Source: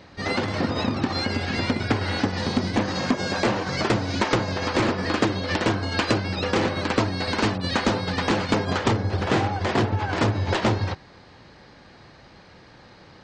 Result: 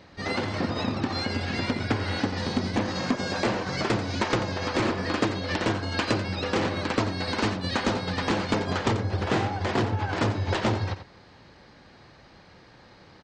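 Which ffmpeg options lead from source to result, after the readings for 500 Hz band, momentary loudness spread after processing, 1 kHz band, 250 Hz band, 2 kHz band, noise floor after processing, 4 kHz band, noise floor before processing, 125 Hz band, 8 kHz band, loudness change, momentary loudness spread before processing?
−3.0 dB, 2 LU, −3.5 dB, −3.0 dB, −3.0 dB, −53 dBFS, −3.0 dB, −50 dBFS, −3.0 dB, −3.0 dB, −3.0 dB, 2 LU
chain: -af "aecho=1:1:88:0.266,volume=-3.5dB"

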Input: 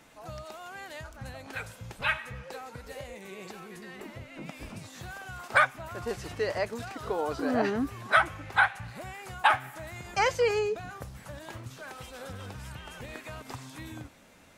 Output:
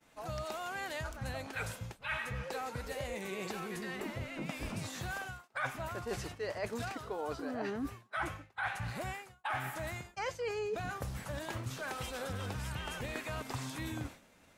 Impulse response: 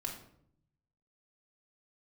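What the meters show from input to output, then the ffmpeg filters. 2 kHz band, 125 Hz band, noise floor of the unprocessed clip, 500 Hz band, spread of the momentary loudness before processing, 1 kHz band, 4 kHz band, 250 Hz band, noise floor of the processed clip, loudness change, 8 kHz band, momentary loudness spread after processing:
−9.5 dB, +0.5 dB, −51 dBFS, −7.0 dB, 18 LU, −9.5 dB, −5.5 dB, −4.5 dB, −64 dBFS, −10.0 dB, −1.0 dB, 4 LU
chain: -af "areverse,acompressor=threshold=-40dB:ratio=10,areverse,agate=range=-33dB:threshold=-48dB:ratio=3:detection=peak,volume=5dB"

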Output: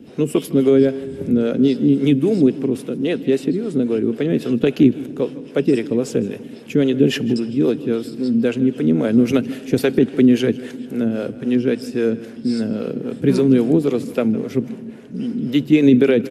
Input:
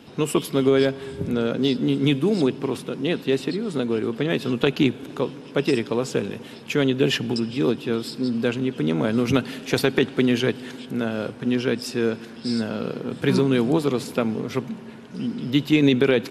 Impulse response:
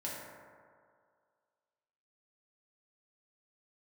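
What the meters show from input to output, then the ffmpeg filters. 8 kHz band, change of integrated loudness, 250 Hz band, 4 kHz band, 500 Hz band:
can't be measured, +5.0 dB, +6.5 dB, −3.5 dB, +4.0 dB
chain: -filter_complex "[0:a]equalizer=frequency=250:width_type=o:width=1:gain=6,equalizer=frequency=500:width_type=o:width=1:gain=4,equalizer=frequency=1000:width_type=o:width=1:gain=-9,equalizer=frequency=4000:width_type=o:width=1:gain=-6,acrossover=split=410[link_01][link_02];[link_01]aeval=exprs='val(0)*(1-0.7/2+0.7/2*cos(2*PI*3.7*n/s))':channel_layout=same[link_03];[link_02]aeval=exprs='val(0)*(1-0.7/2-0.7/2*cos(2*PI*3.7*n/s))':channel_layout=same[link_04];[link_03][link_04]amix=inputs=2:normalize=0,asplit=2[link_05][link_06];[link_06]adelay=157.4,volume=-18dB,highshelf=frequency=4000:gain=-3.54[link_07];[link_05][link_07]amix=inputs=2:normalize=0,volume=4dB"

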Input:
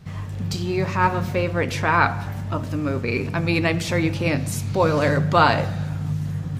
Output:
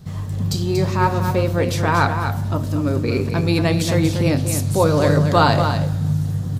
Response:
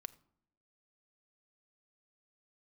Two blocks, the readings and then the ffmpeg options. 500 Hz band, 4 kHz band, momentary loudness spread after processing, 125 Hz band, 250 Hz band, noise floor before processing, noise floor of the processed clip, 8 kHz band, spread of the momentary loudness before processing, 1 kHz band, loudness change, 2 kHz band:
+3.5 dB, +3.5 dB, 7 LU, +5.5 dB, +4.0 dB, −30 dBFS, −25 dBFS, +6.5 dB, 9 LU, +1.0 dB, +3.0 dB, −2.0 dB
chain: -filter_complex "[0:a]tiltshelf=frequency=1400:gain=5.5,aexciter=amount=3.5:drive=5.2:freq=3400,asplit=2[link_01][link_02];[link_02]aecho=0:1:236:0.422[link_03];[link_01][link_03]amix=inputs=2:normalize=0,volume=-1.5dB"

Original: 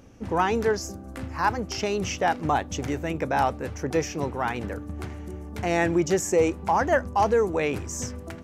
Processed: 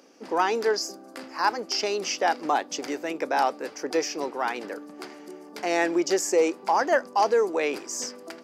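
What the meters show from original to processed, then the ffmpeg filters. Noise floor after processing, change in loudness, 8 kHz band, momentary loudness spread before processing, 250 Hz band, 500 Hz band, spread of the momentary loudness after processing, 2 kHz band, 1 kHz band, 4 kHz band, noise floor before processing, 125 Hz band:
−47 dBFS, 0.0 dB, +1.5 dB, 12 LU, −3.0 dB, 0.0 dB, 15 LU, 0.0 dB, 0.0 dB, +5.0 dB, −40 dBFS, −22.0 dB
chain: -af "highpass=frequency=290:width=0.5412,highpass=frequency=290:width=1.3066,equalizer=frequency=4800:width_type=o:width=0.28:gain=12.5"

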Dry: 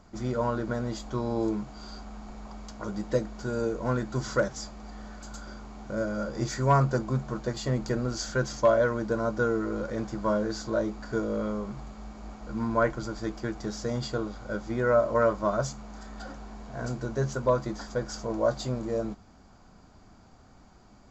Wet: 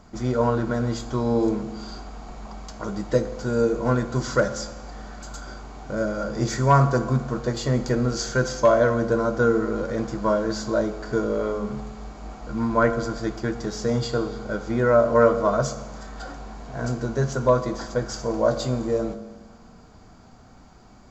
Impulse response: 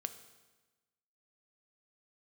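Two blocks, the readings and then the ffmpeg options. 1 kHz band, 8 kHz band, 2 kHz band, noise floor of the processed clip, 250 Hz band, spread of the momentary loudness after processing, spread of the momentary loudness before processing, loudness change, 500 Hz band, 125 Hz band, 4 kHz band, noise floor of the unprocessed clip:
+5.5 dB, can't be measured, +5.0 dB, −49 dBFS, +5.5 dB, 19 LU, 19 LU, +5.5 dB, +6.0 dB, +5.5 dB, +5.0 dB, −55 dBFS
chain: -filter_complex "[1:a]atrim=start_sample=2205[link_01];[0:a][link_01]afir=irnorm=-1:irlink=0,volume=7dB"

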